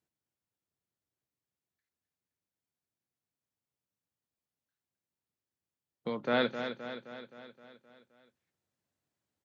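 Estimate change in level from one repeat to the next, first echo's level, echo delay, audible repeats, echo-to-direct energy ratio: −4.5 dB, −9.0 dB, 261 ms, 6, −7.0 dB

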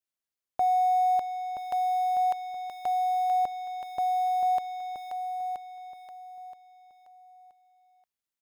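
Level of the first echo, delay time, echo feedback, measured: −8.0 dB, 975 ms, 28%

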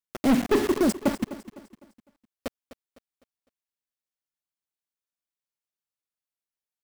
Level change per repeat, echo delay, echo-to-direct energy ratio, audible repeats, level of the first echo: −8.0 dB, 253 ms, −14.0 dB, 3, −15.0 dB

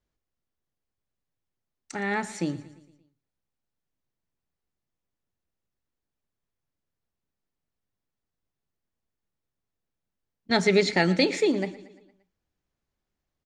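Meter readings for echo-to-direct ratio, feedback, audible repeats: −16.5 dB, 54%, 4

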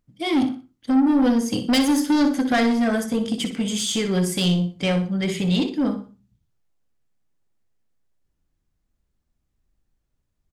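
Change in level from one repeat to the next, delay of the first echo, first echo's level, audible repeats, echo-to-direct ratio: −10.5 dB, 61 ms, −10.0 dB, 3, −9.5 dB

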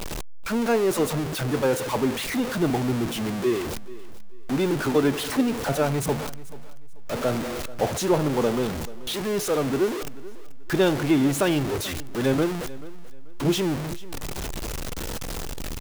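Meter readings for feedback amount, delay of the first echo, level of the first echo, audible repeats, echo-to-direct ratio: 25%, 436 ms, −18.5 dB, 2, −18.0 dB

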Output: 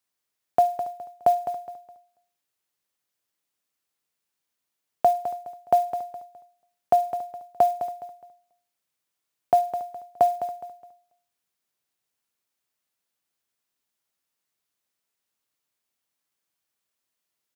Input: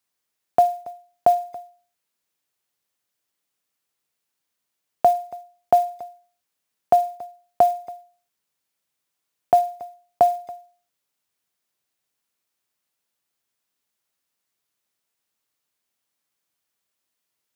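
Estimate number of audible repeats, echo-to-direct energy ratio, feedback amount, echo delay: 3, −10.0 dB, 30%, 208 ms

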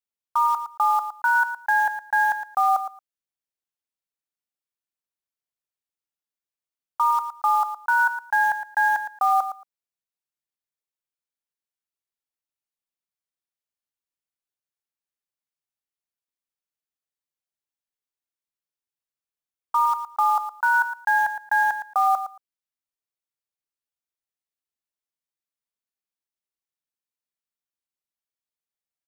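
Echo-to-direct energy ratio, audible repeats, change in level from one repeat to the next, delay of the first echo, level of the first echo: −10.5 dB, 2, −16.0 dB, 113 ms, −10.5 dB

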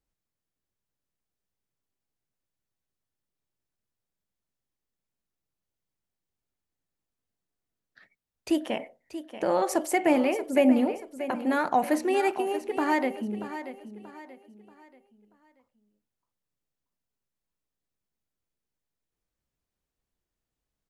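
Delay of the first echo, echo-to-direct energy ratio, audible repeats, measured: 633 ms, −11.5 dB, 3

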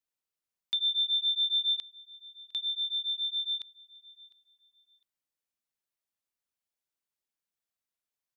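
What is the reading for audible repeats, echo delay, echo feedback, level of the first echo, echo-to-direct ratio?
2, 705 ms, 25%, −22.5 dB, −22.0 dB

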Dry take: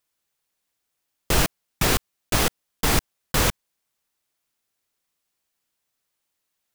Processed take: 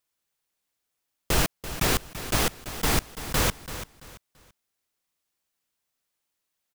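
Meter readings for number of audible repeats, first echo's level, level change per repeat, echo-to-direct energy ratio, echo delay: 3, −12.5 dB, −11.0 dB, −12.0 dB, 336 ms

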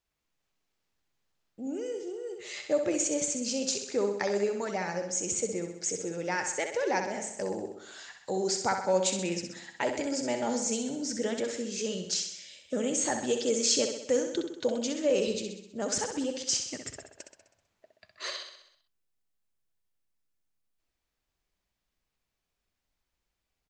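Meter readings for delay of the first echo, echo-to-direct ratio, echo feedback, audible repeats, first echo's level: 64 ms, −5.5 dB, 57%, 6, −7.0 dB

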